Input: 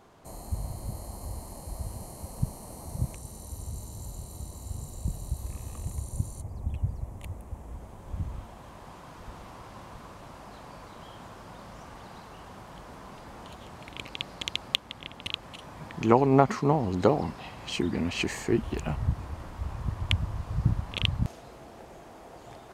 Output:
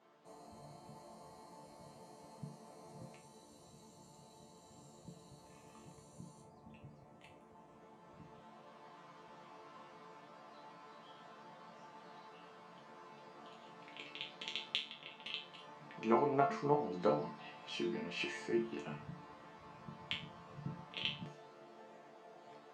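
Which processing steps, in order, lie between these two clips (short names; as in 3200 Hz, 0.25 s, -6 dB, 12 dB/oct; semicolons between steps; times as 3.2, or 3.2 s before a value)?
BPF 220–4900 Hz; resonator bank D3 minor, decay 0.35 s; gain +6.5 dB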